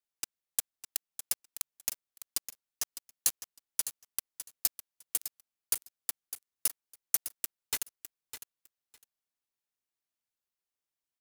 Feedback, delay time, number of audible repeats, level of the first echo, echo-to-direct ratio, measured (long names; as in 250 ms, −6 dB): 16%, 606 ms, 2, −11.5 dB, −11.5 dB